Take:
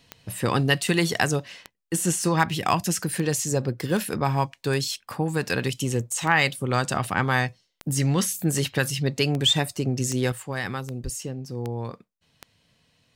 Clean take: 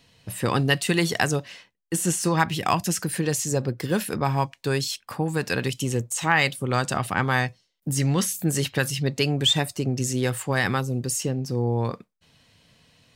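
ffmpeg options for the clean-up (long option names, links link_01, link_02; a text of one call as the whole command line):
ffmpeg -i in.wav -filter_complex "[0:a]adeclick=threshold=4,asplit=3[link_01][link_02][link_03];[link_01]afade=type=out:start_time=11.03:duration=0.02[link_04];[link_02]highpass=frequency=140:width=0.5412,highpass=frequency=140:width=1.3066,afade=type=in:start_time=11.03:duration=0.02,afade=type=out:start_time=11.15:duration=0.02[link_05];[link_03]afade=type=in:start_time=11.15:duration=0.02[link_06];[link_04][link_05][link_06]amix=inputs=3:normalize=0,asetnsamples=nb_out_samples=441:pad=0,asendcmd='10.32 volume volume 6.5dB',volume=0dB" out.wav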